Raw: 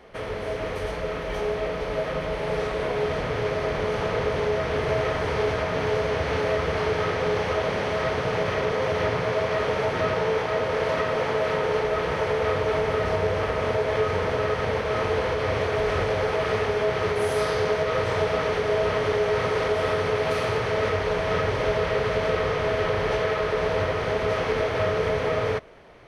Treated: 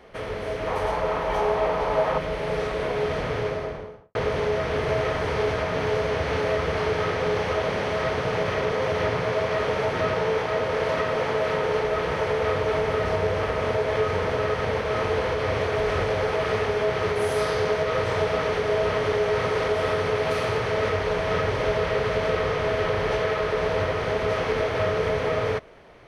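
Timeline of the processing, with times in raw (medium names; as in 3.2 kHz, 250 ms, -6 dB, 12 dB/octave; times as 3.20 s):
0.67–2.18 s: peaking EQ 900 Hz +12.5 dB 0.93 oct
3.31–4.15 s: studio fade out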